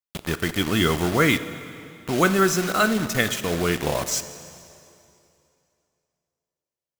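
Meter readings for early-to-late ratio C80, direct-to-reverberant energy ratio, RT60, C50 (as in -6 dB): 13.5 dB, 11.5 dB, 2.7 s, 12.5 dB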